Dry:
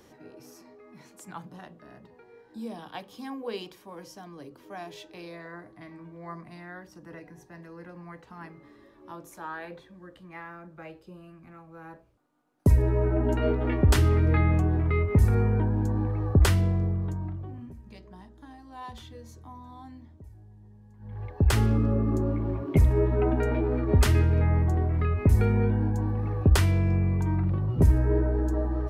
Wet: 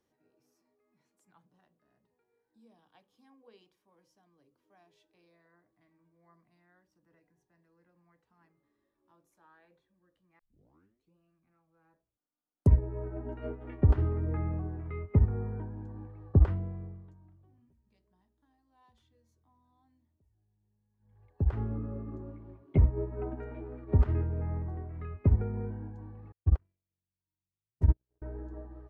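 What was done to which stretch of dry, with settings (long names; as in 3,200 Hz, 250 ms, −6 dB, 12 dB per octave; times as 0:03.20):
0:10.39: tape start 0.76 s
0:26.32–0:28.22: noise gate −18 dBFS, range −46 dB
whole clip: treble cut that deepens with the level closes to 1,100 Hz, closed at −18 dBFS; expander for the loud parts 2.5 to 1, over −31 dBFS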